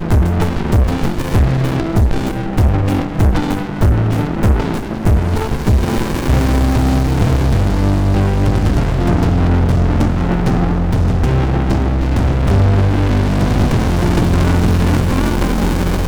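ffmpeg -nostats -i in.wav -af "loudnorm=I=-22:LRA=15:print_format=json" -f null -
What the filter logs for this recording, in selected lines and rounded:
"input_i" : "-15.2",
"input_tp" : "-7.0",
"input_lra" : "1.3",
"input_thresh" : "-25.2",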